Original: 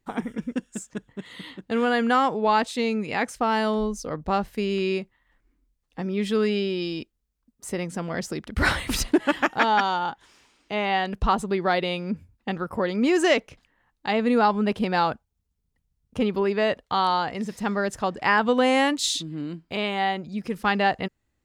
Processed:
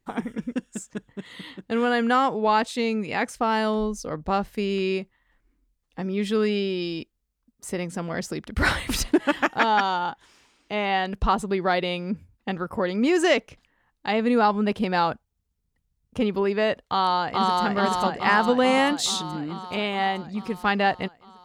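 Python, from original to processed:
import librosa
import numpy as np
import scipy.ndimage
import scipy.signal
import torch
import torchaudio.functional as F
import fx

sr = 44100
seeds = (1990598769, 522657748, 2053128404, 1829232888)

y = fx.echo_throw(x, sr, start_s=16.84, length_s=0.8, ms=430, feedback_pct=70, wet_db=-0.5)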